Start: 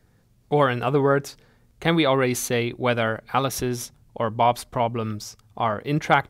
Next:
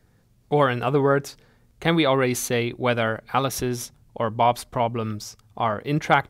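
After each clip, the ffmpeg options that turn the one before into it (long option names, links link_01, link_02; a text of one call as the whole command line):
ffmpeg -i in.wav -af anull out.wav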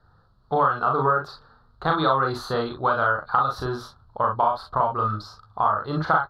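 ffmpeg -i in.wav -filter_complex "[0:a]firequalizer=gain_entry='entry(100,0);entry(220,-8);entry(1300,14);entry(2200,-23);entry(4200,4);entry(6100,-22)':delay=0.05:min_phase=1,acompressor=threshold=-19dB:ratio=5,asplit=2[link_01][link_02];[link_02]aecho=0:1:38|51|63:0.708|0.335|0.178[link_03];[link_01][link_03]amix=inputs=2:normalize=0" out.wav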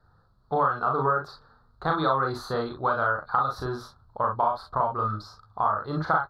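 ffmpeg -i in.wav -af "equalizer=frequency=2900:width=2.8:gain=-8,volume=-3dB" out.wav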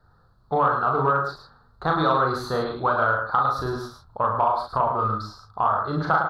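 ffmpeg -i in.wav -filter_complex "[0:a]asplit=2[link_01][link_02];[link_02]aecho=0:1:107:0.473[link_03];[link_01][link_03]amix=inputs=2:normalize=0,acontrast=63,volume=-3.5dB" out.wav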